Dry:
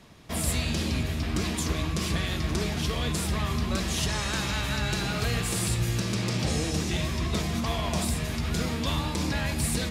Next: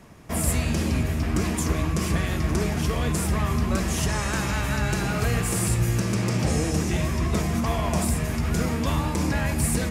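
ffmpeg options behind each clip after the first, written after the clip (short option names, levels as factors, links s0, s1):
-af "equalizer=f=3800:w=1.5:g=-11,volume=1.68"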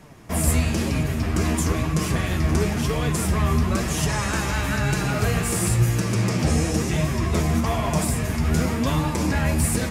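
-af "flanger=delay=6.5:depth=6.3:regen=41:speed=1:shape=sinusoidal,volume=2"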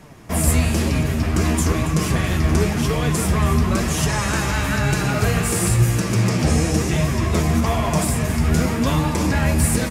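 -af "aecho=1:1:278:0.211,volume=1.41"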